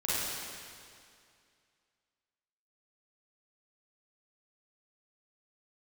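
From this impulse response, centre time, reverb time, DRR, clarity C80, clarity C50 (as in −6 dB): 174 ms, 2.3 s, −10.5 dB, −2.5 dB, −6.0 dB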